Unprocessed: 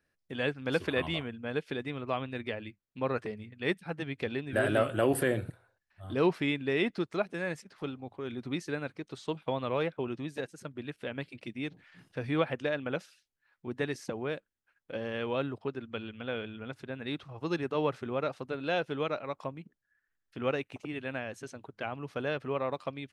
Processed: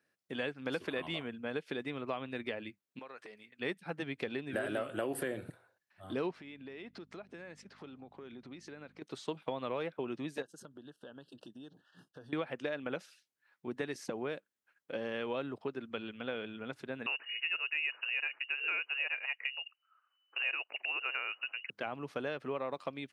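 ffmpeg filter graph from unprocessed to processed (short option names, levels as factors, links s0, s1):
-filter_complex "[0:a]asettb=1/sr,asplit=3[s0][s1][s2];[s0]atrim=end=2.994[s3];[s1]atrim=start=2.99:end=3.59,asetpts=PTS-STARTPTS,afade=t=in:d=0.004:c=qsin,afade=t=out:st=0.596:d=0.004:c=qsin,highpass=f=1200:p=1,acompressor=threshold=0.00501:ratio=4:attack=3.2:release=140:knee=1:detection=peak[s4];[s2]atrim=start=3.586[s5];[s3][s4]acrossfade=d=0.004:c1=hsin:c2=qsin[s6];[s6][s5]acrossfade=d=0.004:c1=qsin:c2=hsin,asettb=1/sr,asplit=3[s7][s8][s9];[s7]atrim=end=6.314[s10];[s8]atrim=start=6.31:end=9.02,asetpts=PTS-STARTPTS,afade=t=in:d=0.004:c=qsin,afade=t=out:st=2.706:d=0.004:c=qsin,lowpass=6500,acompressor=threshold=0.00562:ratio=6:attack=3.2:release=140:knee=1:detection=peak,aeval=exprs='val(0)+0.00141*(sin(2*PI*50*n/s)+sin(2*PI*2*50*n/s)/2+sin(2*PI*3*50*n/s)/3+sin(2*PI*4*50*n/s)/4+sin(2*PI*5*50*n/s)/5)':c=same[s11];[s9]atrim=start=9.016[s12];[s10][s11]acrossfade=d=0.004:c1=hsin:c2=qsin[s13];[s13][s12]acrossfade=d=0.004:c1=qsin:c2=hsin,asettb=1/sr,asplit=3[s14][s15][s16];[s14]atrim=end=10.424[s17];[s15]atrim=start=10.42:end=12.33,asetpts=PTS-STARTPTS,afade=t=in:d=0.004:c=qsin,afade=t=out:st=1.906:d=0.004:c=qsin,agate=range=0.0224:threshold=0.00178:ratio=3:release=100:detection=peak,asuperstop=centerf=2200:order=8:qfactor=2,acompressor=threshold=0.00447:ratio=5:attack=3.2:release=140:knee=1:detection=peak[s18];[s16]atrim=start=12.326[s19];[s17][s18]acrossfade=d=0.004:c1=hsin:c2=qsin[s20];[s20][s19]acrossfade=d=0.004:c1=qsin:c2=hsin,asettb=1/sr,asplit=3[s21][s22][s23];[s21]atrim=end=17.064[s24];[s22]atrim=start=17.06:end=21.7,asetpts=PTS-STARTPTS,afade=t=in:d=0.004:c=qsin,afade=t=out:st=4.636:d=0.004:c=qsin,lowpass=f=2600:t=q:w=0.5098,lowpass=f=2600:t=q:w=0.6013,lowpass=f=2600:t=q:w=0.9,lowpass=f=2600:t=q:w=2.563,afreqshift=-3000,acontrast=22,highpass=470[s25];[s23]atrim=start=21.696[s26];[s24][s25]acrossfade=d=0.004:c1=hsin:c2=qsin[s27];[s27][s26]acrossfade=d=0.004:c1=qsin:c2=hsin,highpass=180,acompressor=threshold=0.0224:ratio=5"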